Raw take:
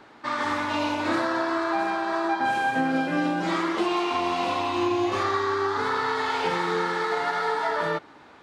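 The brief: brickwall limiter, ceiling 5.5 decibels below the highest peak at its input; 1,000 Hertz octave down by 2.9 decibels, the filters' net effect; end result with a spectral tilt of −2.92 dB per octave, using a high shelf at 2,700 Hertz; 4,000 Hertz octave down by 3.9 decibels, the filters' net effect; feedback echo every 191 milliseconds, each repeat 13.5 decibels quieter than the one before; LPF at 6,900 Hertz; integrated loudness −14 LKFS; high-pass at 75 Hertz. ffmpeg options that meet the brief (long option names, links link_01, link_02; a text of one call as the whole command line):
ffmpeg -i in.wav -af "highpass=75,lowpass=6900,equalizer=frequency=1000:width_type=o:gain=-4,highshelf=frequency=2700:gain=5.5,equalizer=frequency=4000:width_type=o:gain=-9,alimiter=limit=-19dB:level=0:latency=1,aecho=1:1:191|382:0.211|0.0444,volume=14dB" out.wav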